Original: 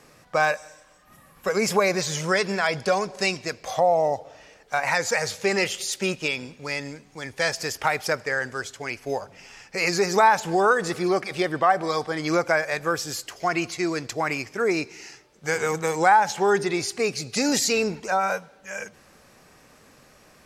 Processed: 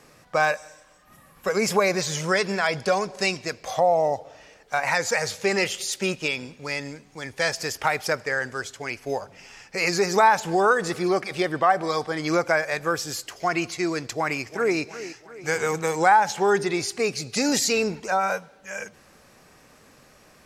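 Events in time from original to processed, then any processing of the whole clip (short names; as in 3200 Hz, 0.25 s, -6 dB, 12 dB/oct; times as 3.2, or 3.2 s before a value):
14.13–14.77 echo throw 0.35 s, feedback 50%, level -14 dB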